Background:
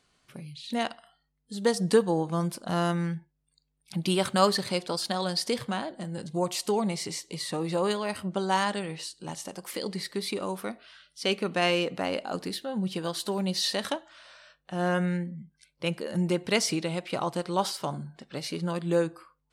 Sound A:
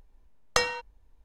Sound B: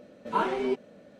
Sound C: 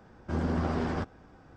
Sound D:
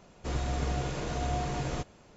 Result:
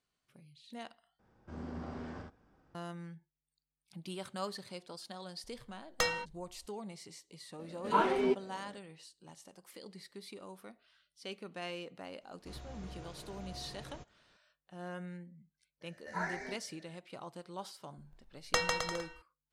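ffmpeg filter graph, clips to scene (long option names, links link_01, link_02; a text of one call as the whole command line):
ffmpeg -i bed.wav -i cue0.wav -i cue1.wav -i cue2.wav -i cue3.wav -filter_complex "[1:a]asplit=2[link_01][link_02];[2:a]asplit=2[link_03][link_04];[0:a]volume=-17dB[link_05];[3:a]aecho=1:1:41|67:0.473|0.596[link_06];[link_01]asoftclip=type=tanh:threshold=-17dB[link_07];[4:a]aresample=16000,aresample=44100[link_08];[link_04]firequalizer=gain_entry='entry(100,0);entry(160,-11);entry(360,-15);entry(690,0);entry(1200,-11);entry(1800,15);entry(3000,-25);entry(4200,2);entry(6000,10);entry(8500,-2)':delay=0.05:min_phase=1[link_09];[link_02]aecho=1:1:150|262.5|346.9|410.2|457.6:0.631|0.398|0.251|0.158|0.1[link_10];[link_05]asplit=2[link_11][link_12];[link_11]atrim=end=1.194[link_13];[link_06]atrim=end=1.56,asetpts=PTS-STARTPTS,volume=-15.5dB[link_14];[link_12]atrim=start=2.746[link_15];[link_07]atrim=end=1.24,asetpts=PTS-STARTPTS,volume=-4dB,afade=type=in:duration=0.004:curve=hsin,afade=type=out:start_time=1.236:duration=0.004:curve=hsin,adelay=5440[link_16];[link_03]atrim=end=1.19,asetpts=PTS-STARTPTS,volume=-1.5dB,afade=type=in:duration=0.004:curve=hsin,afade=type=out:start_time=1.186:duration=0.004:curve=hsin,adelay=7590[link_17];[link_08]atrim=end=2.16,asetpts=PTS-STARTPTS,volume=-17dB,afade=type=in:duration=0.004:curve=hsin,afade=type=out:start_time=2.156:duration=0.004:curve=hsin,adelay=12210[link_18];[link_09]atrim=end=1.19,asetpts=PTS-STARTPTS,volume=-7dB,afade=type=in:duration=0.004:curve=hsin,afade=type=out:start_time=1.186:duration=0.004:curve=hsin,adelay=15810[link_19];[link_10]atrim=end=1.24,asetpts=PTS-STARTPTS,volume=-6dB,afade=type=in:duration=0.004:curve=hsin,afade=type=out:start_time=1.236:duration=0.004:curve=hsin,adelay=17980[link_20];[link_13][link_14]acrossfade=duration=0.004:curve1=hsin:curve2=hsin[link_21];[link_21][link_15]acrossfade=duration=0.004:curve1=hsin:curve2=hsin[link_22];[link_22][link_16][link_17][link_18][link_19][link_20]amix=inputs=6:normalize=0" out.wav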